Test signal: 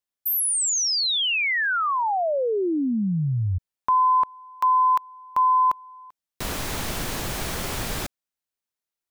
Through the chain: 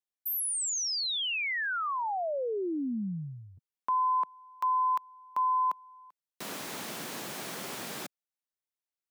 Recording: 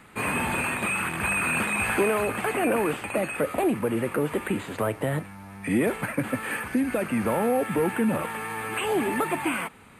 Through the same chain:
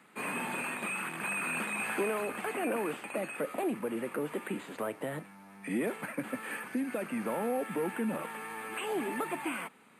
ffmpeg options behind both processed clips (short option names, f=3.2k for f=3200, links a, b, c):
-af "highpass=f=170:w=0.5412,highpass=f=170:w=1.3066,volume=-8.5dB"